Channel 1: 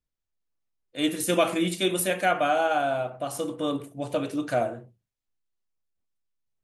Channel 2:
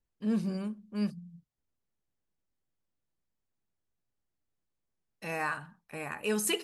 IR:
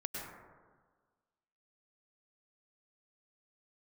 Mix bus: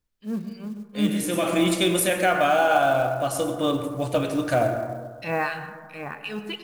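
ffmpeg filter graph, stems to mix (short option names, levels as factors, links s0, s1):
-filter_complex "[0:a]asubboost=boost=4:cutoff=100,alimiter=limit=0.141:level=0:latency=1:release=38,volume=0.708,asplit=2[s0][s1];[s1]volume=0.708[s2];[1:a]highshelf=f=5400:t=q:w=1.5:g=-11.5,dynaudnorm=f=210:g=9:m=3.55,acrossover=split=2000[s3][s4];[s3]aeval=exprs='val(0)*(1-1/2+1/2*cos(2*PI*2.8*n/s))':c=same[s5];[s4]aeval=exprs='val(0)*(1-1/2-1/2*cos(2*PI*2.8*n/s))':c=same[s6];[s5][s6]amix=inputs=2:normalize=0,volume=0.473,asplit=3[s7][s8][s9];[s8]volume=0.473[s10];[s9]apad=whole_len=292756[s11];[s0][s11]sidechaincompress=threshold=0.00447:ratio=8:attack=16:release=401[s12];[2:a]atrim=start_sample=2205[s13];[s2][s10]amix=inputs=2:normalize=0[s14];[s14][s13]afir=irnorm=-1:irlink=0[s15];[s12][s7][s15]amix=inputs=3:normalize=0,acontrast=21,acrusher=bits=7:mode=log:mix=0:aa=0.000001"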